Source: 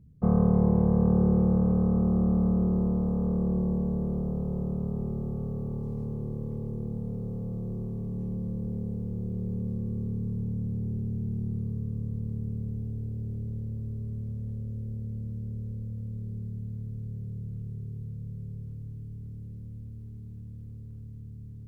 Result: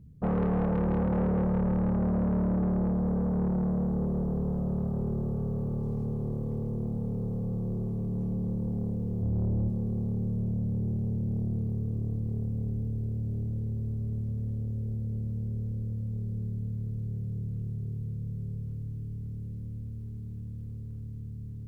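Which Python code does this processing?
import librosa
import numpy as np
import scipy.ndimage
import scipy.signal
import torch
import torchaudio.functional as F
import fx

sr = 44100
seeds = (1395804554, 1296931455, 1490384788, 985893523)

y = fx.peak_eq(x, sr, hz=76.0, db=12.5, octaves=1.1, at=(9.21, 9.69))
y = 10.0 ** (-27.5 / 20.0) * np.tanh(y / 10.0 ** (-27.5 / 20.0))
y = y * 10.0 ** (3.5 / 20.0)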